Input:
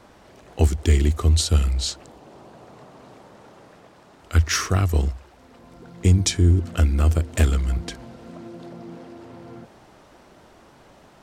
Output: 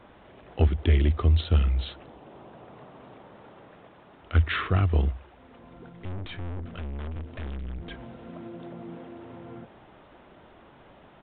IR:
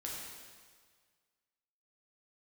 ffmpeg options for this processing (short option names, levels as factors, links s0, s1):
-filter_complex "[0:a]acontrast=70,asettb=1/sr,asplit=3[s0][s1][s2];[s0]atrim=end=5.894[s3];[s1]atrim=start=5.89:end=7.91,asetpts=PTS-STARTPTS,afade=t=in:d=0.004:c=qsin,afade=t=out:st=2.016:d=0.004:c=qsin,aeval=exprs='(tanh(17.8*val(0)+0.5)-tanh(0.5))/17.8':c=same[s4];[s2]atrim=start=7.906[s5];[s3][s4]acrossfade=d=0.004:c1=hsin:c2=qsin[s6];[s6][s5]acrossfade=d=0.004:c1=qsin:c2=hsin,aresample=8000,aresample=44100,volume=0.376"